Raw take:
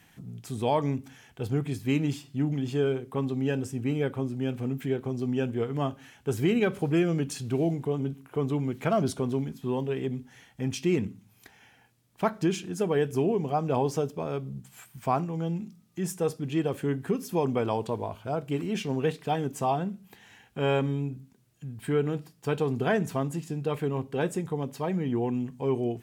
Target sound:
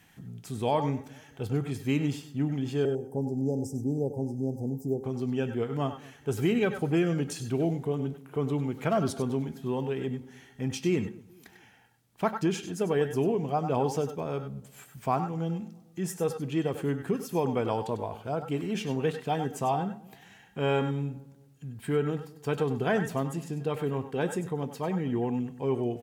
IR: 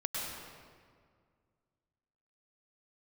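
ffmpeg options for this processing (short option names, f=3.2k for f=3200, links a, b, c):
-filter_complex "[0:a]asettb=1/sr,asplit=3[a][b][c];[a]atrim=end=2.854[d];[b]atrim=start=2.85:end=5.04,asetpts=PTS-STARTPTS,afade=t=in:d=0.004:c=qsin,afade=t=out:st=2.186:d=0.004:c=qsin,asuperstop=centerf=2100:order=20:qfactor=0.52[e];[c]atrim=start=5.036[f];[d][e]acrossfade=d=0.004:c1=hsin:c2=qsin[g];[g][f]acrossfade=d=0.004:c1=qsin:c2=hsin,asplit=2[h][i];[i]adelay=221,lowpass=f=1k:p=1,volume=-22dB,asplit=2[j][k];[k]adelay=221,lowpass=f=1k:p=1,volume=0.44,asplit=2[l][m];[m]adelay=221,lowpass=f=1k:p=1,volume=0.44[n];[h][j][l][n]amix=inputs=4:normalize=0[o];[1:a]atrim=start_sample=2205,atrim=end_sample=4410[p];[o][p]afir=irnorm=-1:irlink=0"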